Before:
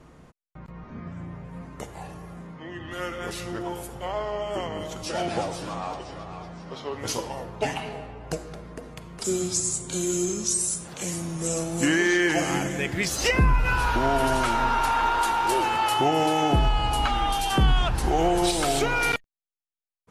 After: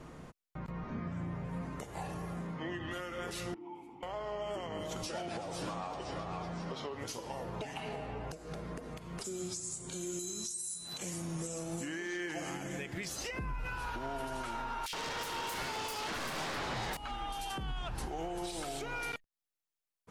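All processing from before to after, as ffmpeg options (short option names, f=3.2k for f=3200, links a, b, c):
-filter_complex "[0:a]asettb=1/sr,asplit=3[a][b][c];[a]atrim=end=3.544[d];[b]atrim=start=3.54:end=4.03,asetpts=PTS-STARTPTS,afade=t=in:d=0.004:c=qsin,afade=t=out:st=0.486:d=0.004:c=qsin,acompressor=threshold=-34dB:ratio=3:attack=3.2:release=140:knee=1:detection=peak,asplit=3[e][f][g];[e]bandpass=f=300:t=q:w=8,volume=0dB[h];[f]bandpass=f=870:t=q:w=8,volume=-6dB[i];[g]bandpass=f=2.24k:t=q:w=8,volume=-9dB[j];[h][i][j]amix=inputs=3:normalize=0[k];[c]atrim=start=4.026[l];[d][k]acrossfade=d=0.004:c1=hsin:c2=qsin[m];[m][l]acrossfade=d=0.004:c1=qsin:c2=hsin,asettb=1/sr,asplit=3[n][o][p];[n]atrim=end=10.194[q];[o]atrim=start=10.19:end=10.98,asetpts=PTS-STARTPTS,afade=t=in:d=0.004:c=qsin,afade=t=out:st=0.786:d=0.004:c=qsin,aemphasis=mode=production:type=50fm,bandreject=f=510:w=7.4,aeval=exprs='val(0)+0.0224*sin(2*PI*4000*n/s)':c=same[r];[p]atrim=start=10.976[s];[q][r]acrossfade=d=0.004:c1=hsin:c2=qsin[t];[t][s]acrossfade=d=0.004:c1=qsin:c2=hsin,asettb=1/sr,asplit=3[u][v][w];[u]atrim=end=14.864[x];[v]atrim=start=14.86:end=16.97,asetpts=PTS-STARTPTS,afade=t=in:d=0.004:c=qsin,afade=t=out:st=2.106:d=0.004:c=qsin,aeval=exprs='0.299*sin(PI/2*5.62*val(0)/0.299)':c=same,acrossover=split=2700[y][z];[y]adelay=70[aa];[aa][z]amix=inputs=2:normalize=0,atrim=end_sample=93051[ab];[w]atrim=start=16.966[ac];[x][ab]acrossfade=d=0.004:c1=hsin:c2=qsin[ad];[ad][ac]acrossfade=d=0.004:c1=qsin:c2=hsin,equalizer=f=65:t=o:w=0.77:g=-4.5,acompressor=threshold=-36dB:ratio=6,alimiter=level_in=7dB:limit=-24dB:level=0:latency=1:release=197,volume=-7dB,volume=1.5dB"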